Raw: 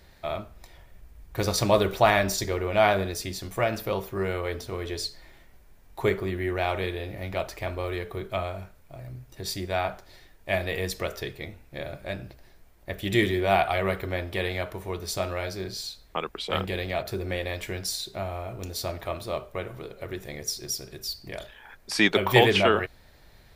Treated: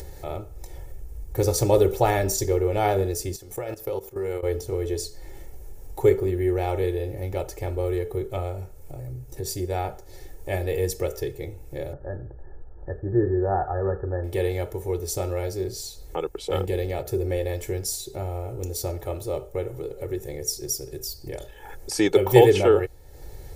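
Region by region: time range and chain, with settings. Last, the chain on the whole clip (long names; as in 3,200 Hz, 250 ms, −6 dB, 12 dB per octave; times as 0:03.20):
0:03.36–0:04.43: output level in coarse steps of 15 dB + low-shelf EQ 330 Hz −7 dB
0:11.93–0:14.24: linear-phase brick-wall low-pass 1,800 Hz + parametric band 310 Hz −3.5 dB 2.3 octaves
whole clip: flat-topped bell 2,100 Hz −12 dB 2.6 octaves; upward compression, threshold −35 dBFS; comb filter 2.3 ms, depth 74%; level +3 dB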